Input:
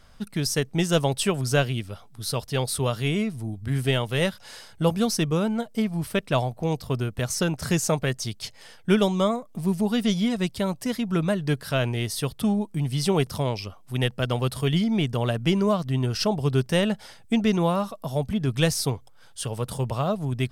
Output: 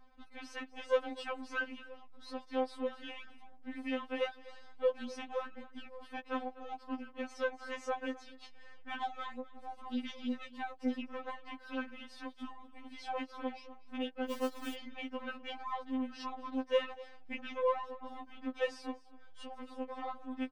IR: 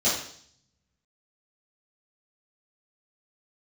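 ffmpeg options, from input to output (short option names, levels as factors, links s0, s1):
-filter_complex "[0:a]aeval=exprs='if(lt(val(0),0),0.447*val(0),val(0))':c=same,lowshelf=f=400:g=-2.5,acrossover=split=200|1300[s0][s1][s2];[s0]acompressor=threshold=0.00447:ratio=6[s3];[s3][s1][s2]amix=inputs=3:normalize=0,lowpass=2500,equalizer=f=840:t=o:w=0.92:g=3.5,asplit=2[s4][s5];[s5]aecho=0:1:248:0.106[s6];[s4][s6]amix=inputs=2:normalize=0,asettb=1/sr,asplit=3[s7][s8][s9];[s7]atrim=end=14.274[s10];[s8]atrim=start=14.27:end=14.74,asetpts=PTS-STARTPTS,afade=t=in:d=0.004:c=qsin,afade=t=out:st=0.466:d=0.004:c=qsin,acrusher=bits=7:dc=4:mix=0:aa=0.000001[s11];[s9]atrim=start=14.736[s12];[s10][s11]acrossfade=d=0.004:c1=hsin:c2=qsin[s13];[s13][s12]acrossfade=d=0.004:c1=qsin:c2=hsin,afftfilt=real='re*3.46*eq(mod(b,12),0)':imag='im*3.46*eq(mod(b,12),0)':win_size=2048:overlap=0.75,volume=0.562"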